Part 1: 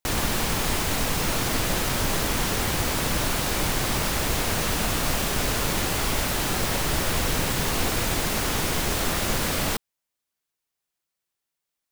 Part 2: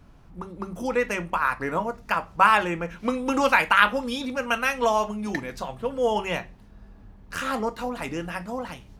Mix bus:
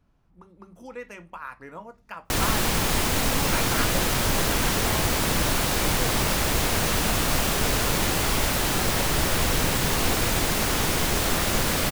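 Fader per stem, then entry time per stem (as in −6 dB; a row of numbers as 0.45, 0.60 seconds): +1.5, −14.0 decibels; 2.25, 0.00 seconds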